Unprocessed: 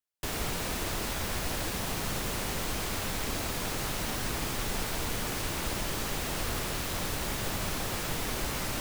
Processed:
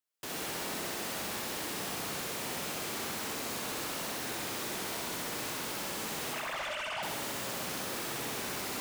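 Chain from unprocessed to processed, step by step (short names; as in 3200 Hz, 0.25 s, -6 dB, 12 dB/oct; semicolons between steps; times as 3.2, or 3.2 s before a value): 6.33–7.03 sine-wave speech; HPF 190 Hz 12 dB/oct; soft clip -36.5 dBFS, distortion -9 dB; on a send: flutter echo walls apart 11.1 m, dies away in 1.1 s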